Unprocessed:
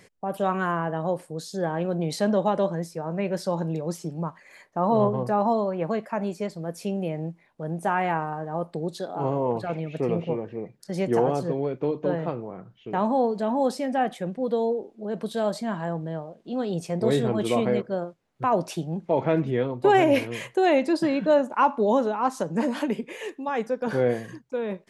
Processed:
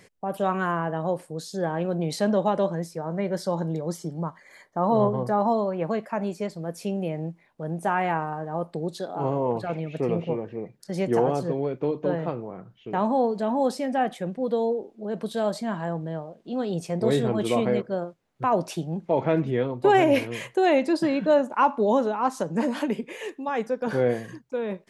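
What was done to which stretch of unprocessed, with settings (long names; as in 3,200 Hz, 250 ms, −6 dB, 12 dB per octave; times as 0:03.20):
0:02.96–0:05.61: Butterworth band-reject 2,600 Hz, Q 5.3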